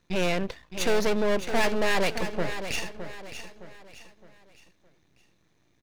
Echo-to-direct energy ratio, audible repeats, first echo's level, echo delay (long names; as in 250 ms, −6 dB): −9.5 dB, 4, −10.0 dB, 614 ms